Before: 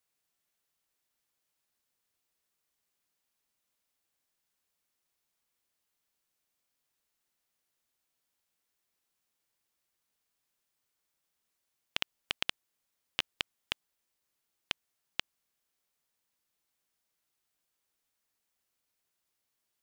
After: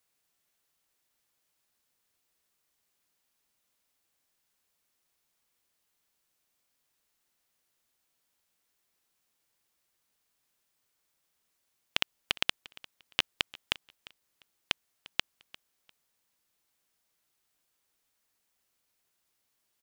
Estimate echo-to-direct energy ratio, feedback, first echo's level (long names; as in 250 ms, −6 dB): −21.0 dB, 24%, −21.0 dB